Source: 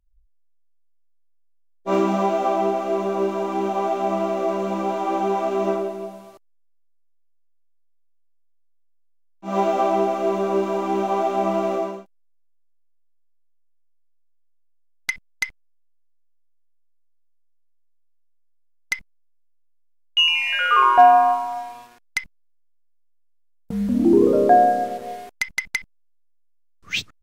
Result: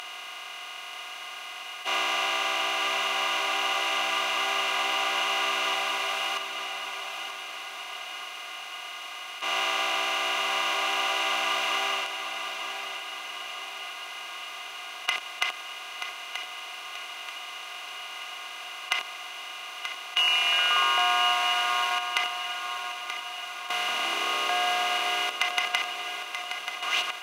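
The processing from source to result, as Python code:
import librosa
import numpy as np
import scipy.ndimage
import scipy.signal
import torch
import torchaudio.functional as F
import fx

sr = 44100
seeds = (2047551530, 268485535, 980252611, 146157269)

p1 = fx.bin_compress(x, sr, power=0.2)
p2 = scipy.signal.sosfilt(scipy.signal.butter(2, 1400.0, 'highpass', fs=sr, output='sos'), p1)
p3 = p2 + fx.echo_feedback(p2, sr, ms=932, feedback_pct=45, wet_db=-8.5, dry=0)
y = F.gain(torch.from_numpy(p3), -8.5).numpy()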